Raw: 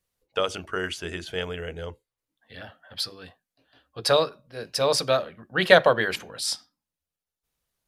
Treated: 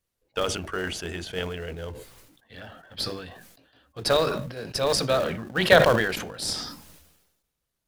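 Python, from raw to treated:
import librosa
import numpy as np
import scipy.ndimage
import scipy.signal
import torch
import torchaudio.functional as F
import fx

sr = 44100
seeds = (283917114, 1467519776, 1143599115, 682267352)

p1 = fx.sample_hold(x, sr, seeds[0], rate_hz=1100.0, jitter_pct=20)
p2 = x + (p1 * librosa.db_to_amplitude(-11.0))
p3 = fx.sustainer(p2, sr, db_per_s=53.0)
y = p3 * librosa.db_to_amplitude(-2.0)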